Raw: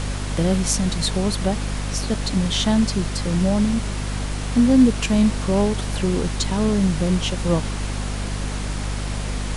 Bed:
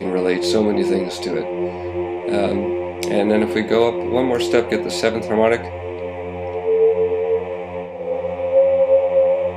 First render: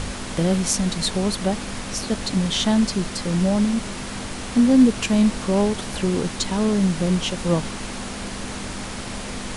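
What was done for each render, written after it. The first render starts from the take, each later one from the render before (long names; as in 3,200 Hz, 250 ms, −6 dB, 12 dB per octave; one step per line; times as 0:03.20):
hum removal 50 Hz, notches 3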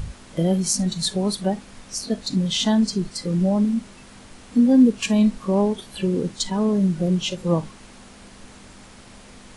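noise reduction from a noise print 14 dB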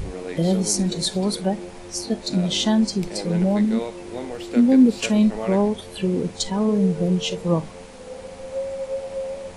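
mix in bed −14 dB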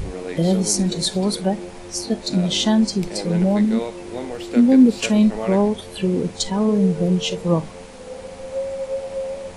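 level +2 dB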